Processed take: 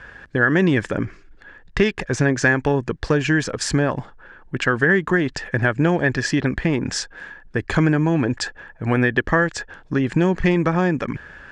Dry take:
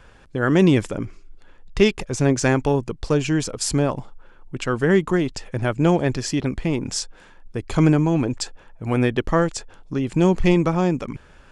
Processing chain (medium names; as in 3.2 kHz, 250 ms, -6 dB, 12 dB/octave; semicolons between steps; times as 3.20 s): high-pass 50 Hz 6 dB/octave; peaking EQ 1.7 kHz +14.5 dB 0.37 oct; compression 3:1, threshold -20 dBFS, peak gain reduction 8.5 dB; distance through air 74 m; trim +5 dB